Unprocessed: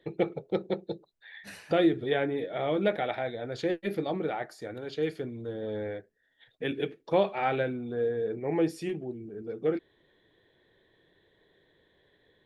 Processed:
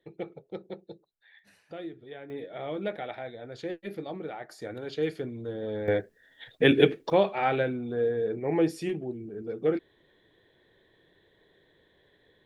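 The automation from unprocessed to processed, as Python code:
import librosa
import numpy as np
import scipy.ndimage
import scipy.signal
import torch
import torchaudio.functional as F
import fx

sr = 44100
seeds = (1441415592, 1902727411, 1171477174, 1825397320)

y = fx.gain(x, sr, db=fx.steps((0.0, -9.5), (1.39, -16.0), (2.3, -6.0), (4.49, 1.0), (5.88, 12.0), (7.1, 2.0)))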